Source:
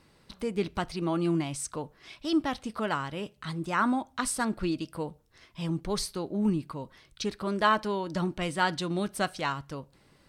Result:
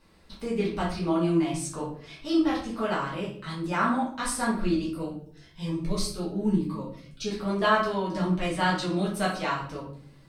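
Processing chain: reverb RT60 0.55 s, pre-delay 4 ms, DRR -7 dB; 4.93–7.31 cascading phaser rising 1 Hz; gain -5.5 dB

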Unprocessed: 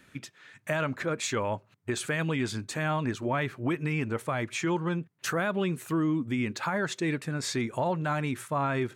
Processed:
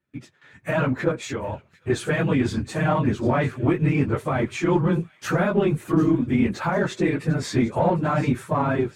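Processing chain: phase scrambler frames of 50 ms; tilt shelf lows +3 dB; in parallel at -8 dB: one-sided clip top -31.5 dBFS; 1.11–1.9 on the sum: compressor 4:1, threshold -31 dBFS, peak gain reduction 9.5 dB; high shelf 3300 Hz -6.5 dB; AGC gain up to 8 dB; gate with hold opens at -41 dBFS; on a send: thin delay 0.748 s, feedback 53%, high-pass 3200 Hz, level -15 dB; on the sum: gain -3.5 dB

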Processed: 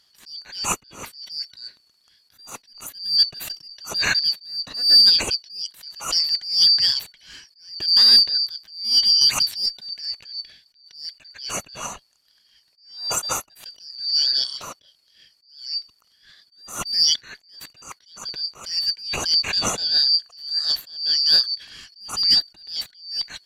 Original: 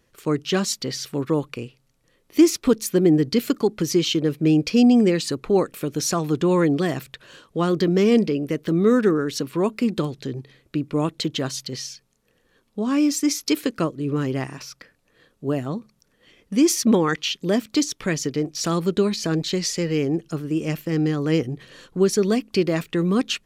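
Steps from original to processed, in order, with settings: four-band scrambler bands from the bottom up 4321; 9.21–9.66 high shelf 2900 Hz +8.5 dB; in parallel at -4.5 dB: one-sided clip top -15 dBFS; on the sum: attack slew limiter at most 110 dB/s

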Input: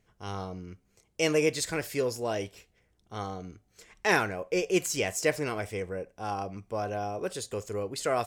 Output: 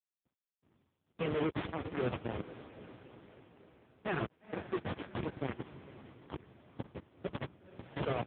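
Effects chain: 2.22–3.3 HPF 46 Hz 12 dB/oct; 6.25–7.21 de-esser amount 25%; high shelf 2800 Hz +10.5 dB; 4.48–5.37 compressor 5:1, threshold -27 dBFS, peak gain reduction 8.5 dB; Schmitt trigger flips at -23.5 dBFS; air absorption 110 m; diffused feedback echo 0.488 s, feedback 54%, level -13.5 dB; gain +1 dB; AMR-NB 4.75 kbps 8000 Hz

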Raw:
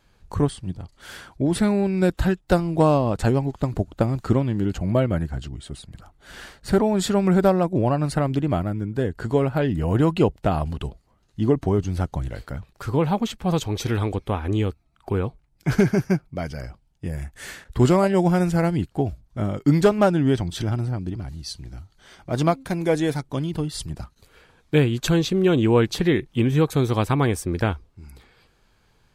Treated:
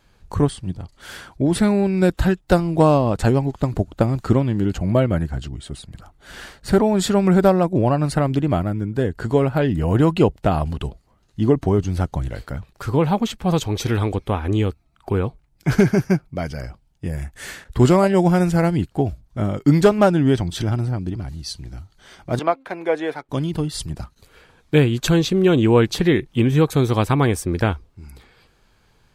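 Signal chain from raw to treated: 22.39–23.29 three-band isolator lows -23 dB, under 360 Hz, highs -18 dB, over 3100 Hz; gain +3 dB

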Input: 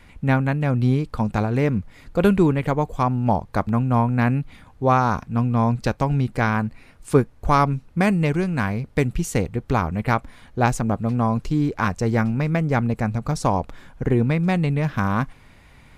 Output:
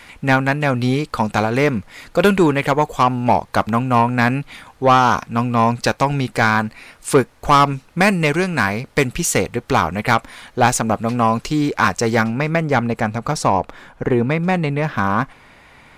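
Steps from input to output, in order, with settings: high shelf 4700 Hz +9 dB; overdrive pedal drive 17 dB, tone 4800 Hz, clips at -1.5 dBFS, from 12.24 s tone 2100 Hz, from 13.43 s tone 1300 Hz

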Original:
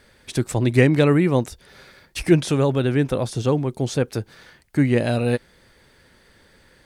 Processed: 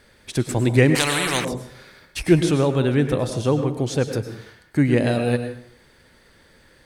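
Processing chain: plate-style reverb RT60 0.59 s, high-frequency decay 0.75×, pre-delay 90 ms, DRR 8 dB; 0.95–1.45 spectral compressor 4:1

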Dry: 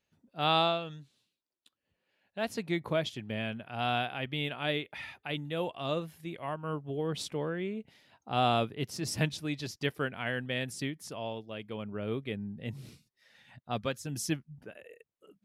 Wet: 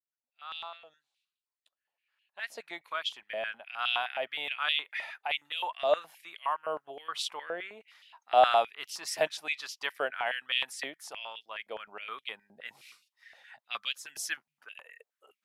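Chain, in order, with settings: opening faded in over 4.90 s; stepped high-pass 9.6 Hz 640–2900 Hz

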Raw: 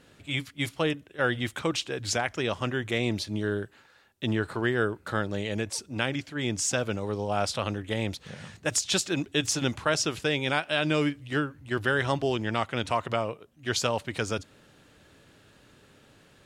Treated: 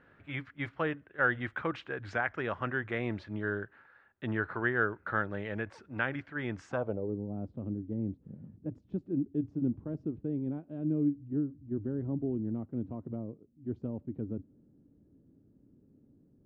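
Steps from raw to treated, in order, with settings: low-pass sweep 1600 Hz -> 270 Hz, 6.64–7.17; gain -6.5 dB

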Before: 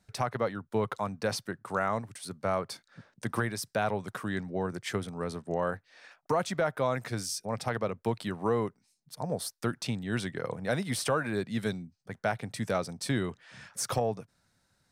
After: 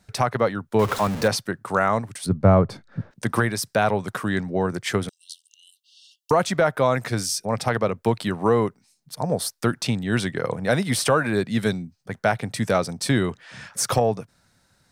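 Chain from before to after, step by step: 0.79–1.28 zero-crossing step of -35 dBFS; 2.26–3.11 tilt -4.5 dB/oct; 5.09–6.31 brick-wall FIR high-pass 2700 Hz; gain +9 dB

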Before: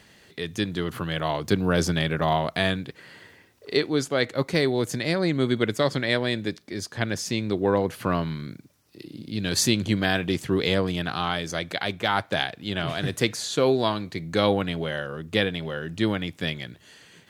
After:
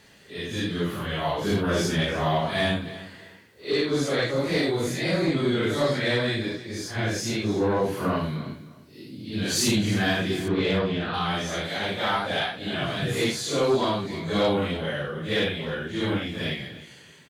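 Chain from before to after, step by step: phase scrambler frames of 0.2 s; 10.48–11.14 LPF 3600 Hz 12 dB/oct; sine folder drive 4 dB, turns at -8.5 dBFS; feedback echo 0.307 s, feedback 23%, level -16 dB; gain -7.5 dB

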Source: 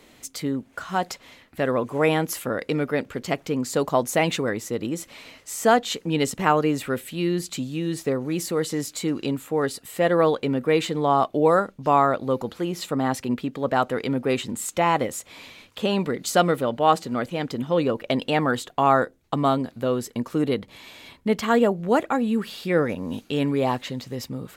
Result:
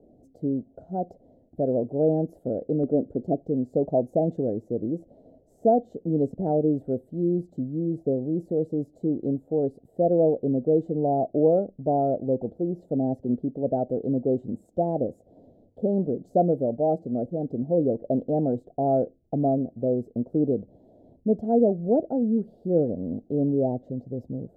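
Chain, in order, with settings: elliptic low-pass 690 Hz, stop band 40 dB; 2.83–3.4 dynamic EQ 300 Hz, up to +5 dB, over -39 dBFS, Q 1.5

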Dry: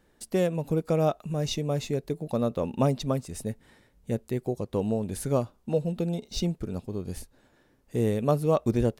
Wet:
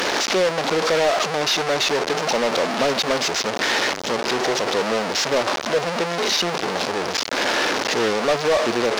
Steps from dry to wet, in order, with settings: delta modulation 32 kbps, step -22 dBFS; HPF 420 Hz 12 dB/oct; sample leveller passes 3

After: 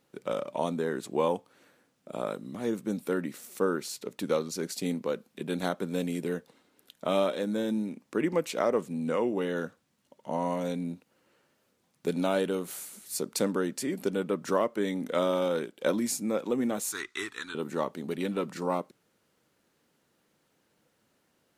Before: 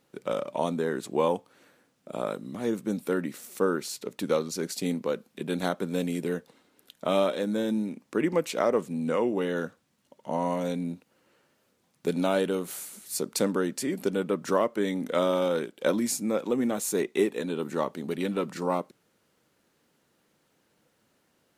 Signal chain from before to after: 16.92–17.55 EQ curve 110 Hz 0 dB, 170 Hz -20 dB, 320 Hz -11 dB, 560 Hz -24 dB, 1300 Hz +12 dB, 2500 Hz 0 dB, 4500 Hz +7 dB, 7800 Hz +4 dB, 14000 Hz -8 dB; gain -2 dB

